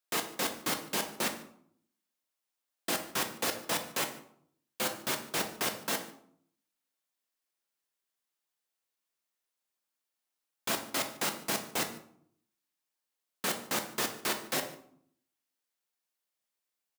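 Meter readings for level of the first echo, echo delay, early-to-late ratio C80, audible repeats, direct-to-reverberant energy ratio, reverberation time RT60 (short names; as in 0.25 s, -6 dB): -22.5 dB, 0.147 s, 13.5 dB, 1, 5.0 dB, 0.65 s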